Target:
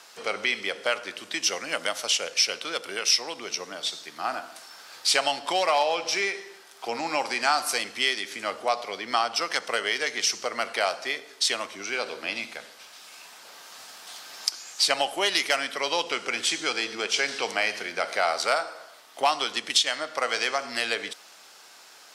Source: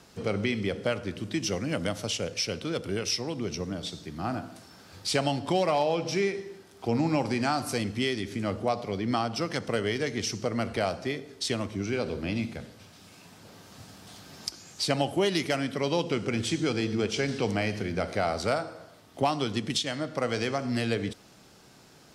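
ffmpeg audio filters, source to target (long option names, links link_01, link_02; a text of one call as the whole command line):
ffmpeg -i in.wav -af "highpass=860,volume=8dB" out.wav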